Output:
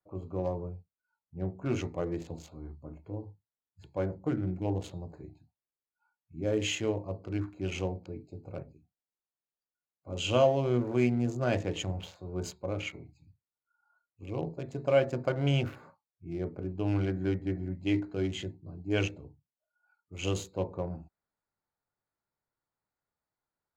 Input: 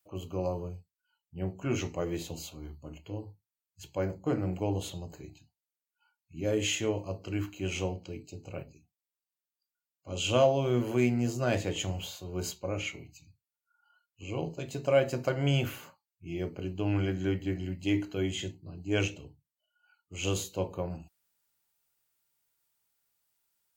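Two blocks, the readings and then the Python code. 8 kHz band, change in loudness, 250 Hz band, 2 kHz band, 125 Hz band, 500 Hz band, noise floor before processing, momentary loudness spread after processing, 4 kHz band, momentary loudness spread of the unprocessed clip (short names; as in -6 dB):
-6.0 dB, -0.5 dB, 0.0 dB, -2.0 dB, 0.0 dB, -0.5 dB, under -85 dBFS, 18 LU, -2.5 dB, 17 LU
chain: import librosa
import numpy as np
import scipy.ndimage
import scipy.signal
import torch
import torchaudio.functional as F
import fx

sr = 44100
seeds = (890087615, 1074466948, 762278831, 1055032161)

y = fx.wiener(x, sr, points=15)
y = fx.spec_box(y, sr, start_s=4.29, length_s=0.36, low_hz=400.0, high_hz=1300.0, gain_db=-10)
y = fx.high_shelf(y, sr, hz=9300.0, db=-12.0)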